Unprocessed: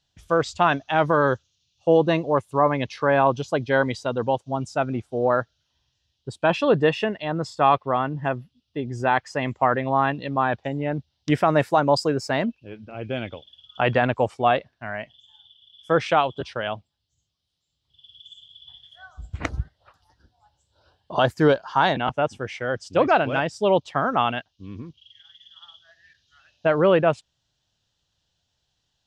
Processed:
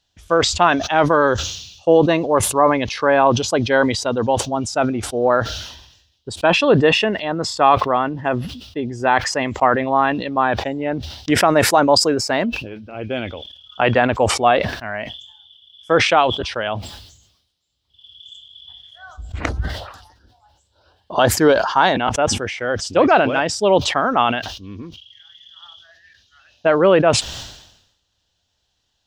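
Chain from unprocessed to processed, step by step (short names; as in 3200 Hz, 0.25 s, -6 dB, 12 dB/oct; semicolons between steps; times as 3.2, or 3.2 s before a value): bell 140 Hz -10 dB 0.47 oct; sustainer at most 64 dB/s; gain +4.5 dB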